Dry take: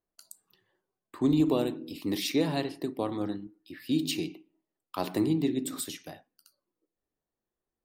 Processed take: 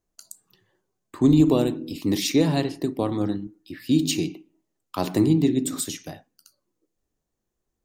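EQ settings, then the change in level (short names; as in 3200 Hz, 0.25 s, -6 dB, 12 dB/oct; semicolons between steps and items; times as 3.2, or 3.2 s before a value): low shelf 210 Hz +9.5 dB; bell 6600 Hz +8 dB 0.51 oct; +4.0 dB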